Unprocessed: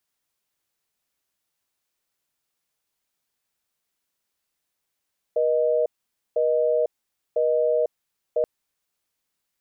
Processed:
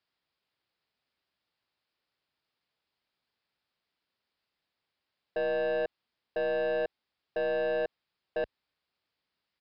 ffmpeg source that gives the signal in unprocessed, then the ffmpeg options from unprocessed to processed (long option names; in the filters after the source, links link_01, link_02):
-f lavfi -i "aevalsrc='0.0891*(sin(2*PI*480*t)+sin(2*PI*620*t))*clip(min(mod(t,1),0.5-mod(t,1))/0.005,0,1)':duration=3.08:sample_rate=44100"
-af "highpass=45,aeval=exprs='(tanh(22.4*val(0)+0.1)-tanh(0.1))/22.4':channel_layout=same,aresample=11025,aresample=44100"